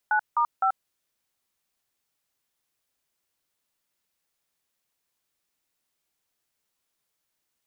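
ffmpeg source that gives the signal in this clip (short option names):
-f lavfi -i "aevalsrc='0.0794*clip(min(mod(t,0.256),0.084-mod(t,0.256))/0.002,0,1)*(eq(floor(t/0.256),0)*(sin(2*PI*852*mod(t,0.256))+sin(2*PI*1477*mod(t,0.256)))+eq(floor(t/0.256),1)*(sin(2*PI*941*mod(t,0.256))+sin(2*PI*1209*mod(t,0.256)))+eq(floor(t/0.256),2)*(sin(2*PI*770*mod(t,0.256))+sin(2*PI*1336*mod(t,0.256))))':d=0.768:s=44100"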